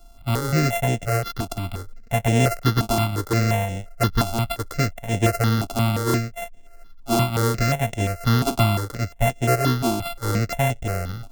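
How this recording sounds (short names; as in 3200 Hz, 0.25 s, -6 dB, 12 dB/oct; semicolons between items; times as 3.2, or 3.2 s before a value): a buzz of ramps at a fixed pitch in blocks of 64 samples; notches that jump at a steady rate 5.7 Hz 500–4500 Hz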